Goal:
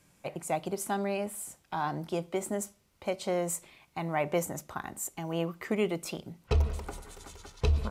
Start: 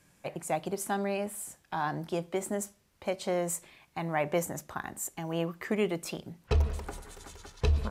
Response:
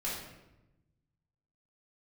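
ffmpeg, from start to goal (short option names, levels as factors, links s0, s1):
-af "bandreject=f=1700:w=9.4"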